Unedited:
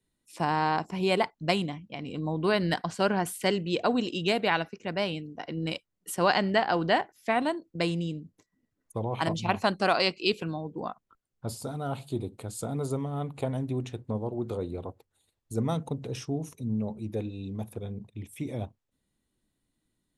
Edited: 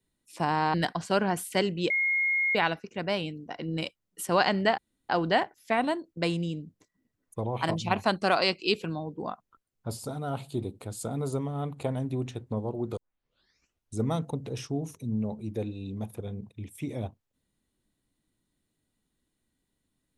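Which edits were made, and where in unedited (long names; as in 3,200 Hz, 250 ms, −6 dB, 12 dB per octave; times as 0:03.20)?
0:00.74–0:02.63: remove
0:03.79–0:04.44: beep over 2,150 Hz −23 dBFS
0:06.67: splice in room tone 0.31 s
0:14.55: tape start 1.05 s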